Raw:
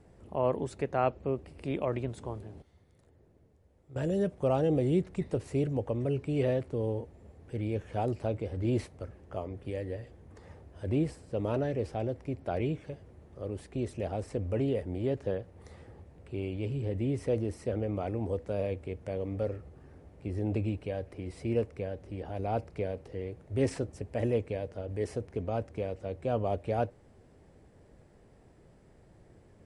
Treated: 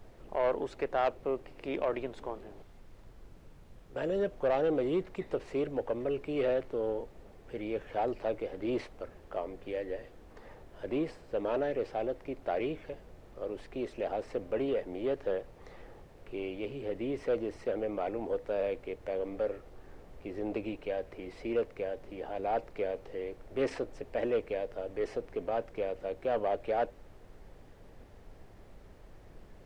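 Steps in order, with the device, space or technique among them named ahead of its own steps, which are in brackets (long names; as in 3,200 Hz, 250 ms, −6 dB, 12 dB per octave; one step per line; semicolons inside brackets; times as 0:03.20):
aircraft cabin announcement (band-pass filter 380–3,800 Hz; soft clipping −25 dBFS, distortion −16 dB; brown noise bed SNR 16 dB)
level +3.5 dB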